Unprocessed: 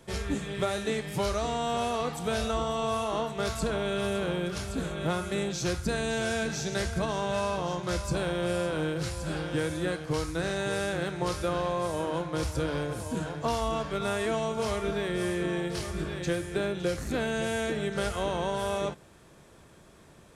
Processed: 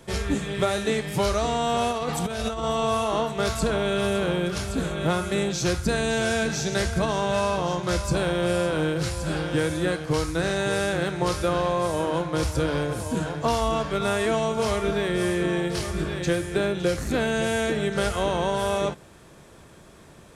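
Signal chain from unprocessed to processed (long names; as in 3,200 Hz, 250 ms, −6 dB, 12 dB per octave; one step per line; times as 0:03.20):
0:01.91–0:02.64: compressor whose output falls as the input rises −32 dBFS, ratio −0.5
level +5.5 dB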